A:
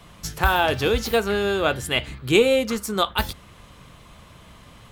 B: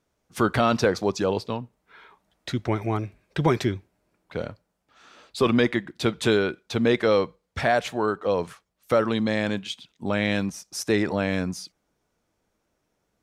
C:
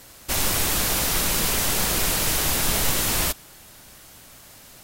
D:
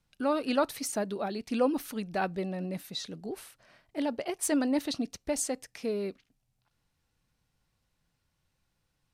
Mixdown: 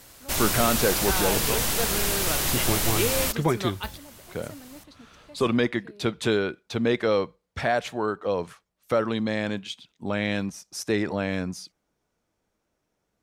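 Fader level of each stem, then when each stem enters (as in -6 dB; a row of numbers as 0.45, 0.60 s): -10.5, -2.5, -3.0, -18.5 dB; 0.65, 0.00, 0.00, 0.00 s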